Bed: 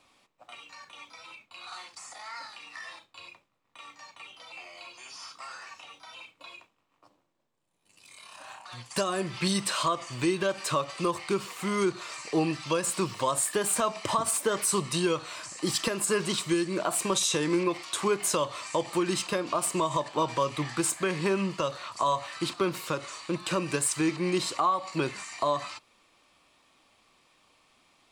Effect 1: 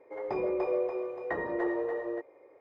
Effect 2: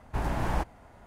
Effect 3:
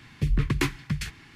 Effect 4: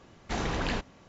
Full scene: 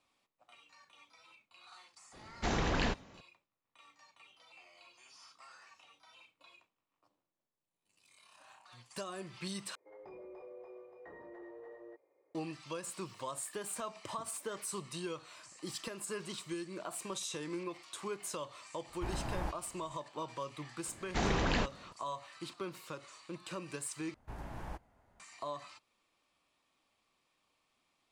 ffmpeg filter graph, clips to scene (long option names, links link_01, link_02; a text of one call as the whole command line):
ffmpeg -i bed.wav -i cue0.wav -i cue1.wav -i cue2.wav -i cue3.wav -filter_complex "[4:a]asplit=2[link_01][link_02];[2:a]asplit=2[link_03][link_04];[0:a]volume=-14dB[link_05];[1:a]alimiter=level_in=3dB:limit=-24dB:level=0:latency=1:release=14,volume=-3dB[link_06];[link_05]asplit=3[link_07][link_08][link_09];[link_07]atrim=end=9.754[link_10];[link_06]atrim=end=2.6,asetpts=PTS-STARTPTS,volume=-17dB[link_11];[link_08]atrim=start=12.346:end=24.144[link_12];[link_04]atrim=end=1.06,asetpts=PTS-STARTPTS,volume=-15.5dB[link_13];[link_09]atrim=start=25.196[link_14];[link_01]atrim=end=1.08,asetpts=PTS-STARTPTS,volume=-1.5dB,afade=type=in:duration=0.004:curve=hsin,afade=type=out:start_time=1.076:duration=0.004:curve=hsin,adelay=2130[link_15];[link_03]atrim=end=1.06,asetpts=PTS-STARTPTS,volume=-9.5dB,afade=type=in:duration=0.004:curve=hsin,afade=type=out:start_time=1.056:duration=0.004:curve=hsin,adelay=18880[link_16];[link_02]atrim=end=1.08,asetpts=PTS-STARTPTS,volume=-1dB,afade=type=in:duration=0.004:curve=hsin,afade=type=out:start_time=1.076:duration=0.004:curve=hsin,adelay=20850[link_17];[link_10][link_11]acrossfade=duration=0.004:curve1=hsin:curve2=hsin[link_18];[link_18][link_12]acrossfade=duration=0.004:curve1=hsin:curve2=hsin[link_19];[link_19][link_13]acrossfade=duration=0.004:curve1=hsin:curve2=hsin[link_20];[link_20][link_14]acrossfade=duration=0.004:curve1=hsin:curve2=hsin[link_21];[link_21][link_15][link_16][link_17]amix=inputs=4:normalize=0" out.wav